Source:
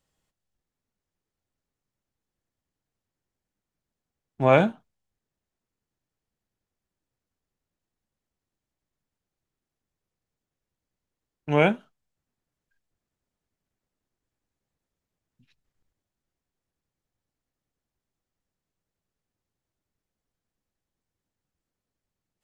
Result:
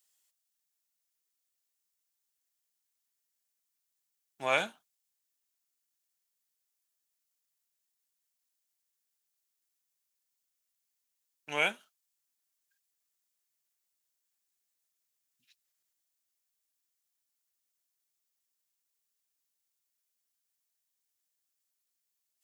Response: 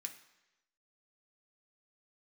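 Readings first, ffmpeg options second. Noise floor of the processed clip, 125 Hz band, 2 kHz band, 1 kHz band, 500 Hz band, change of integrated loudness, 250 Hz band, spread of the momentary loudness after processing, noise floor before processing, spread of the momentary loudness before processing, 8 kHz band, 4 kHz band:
−84 dBFS, −25.5 dB, −2.5 dB, −9.5 dB, −14.0 dB, −9.0 dB, −21.0 dB, 8 LU, below −85 dBFS, 8 LU, can't be measured, +1.0 dB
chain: -af "aderivative,volume=8dB"

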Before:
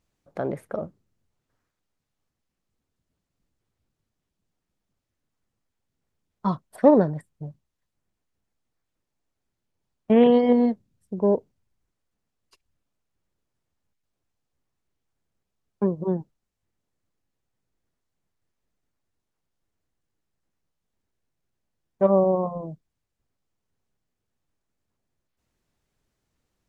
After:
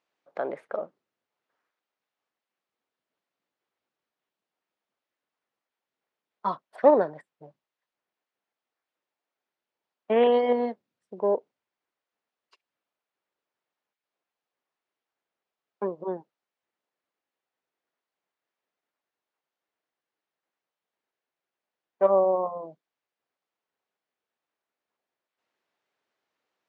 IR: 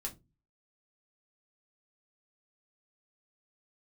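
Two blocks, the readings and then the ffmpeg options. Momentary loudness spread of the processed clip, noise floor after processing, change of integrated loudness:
15 LU, below −85 dBFS, −3.5 dB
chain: -af "highpass=520,lowpass=3600,volume=1.5dB"

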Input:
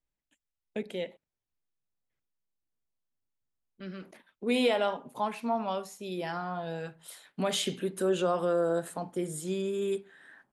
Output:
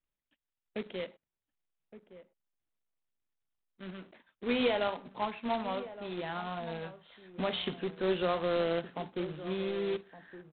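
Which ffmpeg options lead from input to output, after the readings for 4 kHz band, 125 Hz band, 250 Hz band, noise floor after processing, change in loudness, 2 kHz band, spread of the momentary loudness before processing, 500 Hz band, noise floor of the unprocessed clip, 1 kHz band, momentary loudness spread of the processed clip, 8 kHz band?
−2.5 dB, −3.0 dB, −3.0 dB, below −85 dBFS, −3.0 dB, −0.5 dB, 16 LU, −3.0 dB, below −85 dBFS, −2.5 dB, 16 LU, below −35 dB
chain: -filter_complex "[0:a]aresample=8000,acrusher=bits=2:mode=log:mix=0:aa=0.000001,aresample=44100,asplit=2[link_01][link_02];[link_02]adelay=1166,volume=-14dB,highshelf=frequency=4000:gain=-26.2[link_03];[link_01][link_03]amix=inputs=2:normalize=0,volume=-3.5dB"

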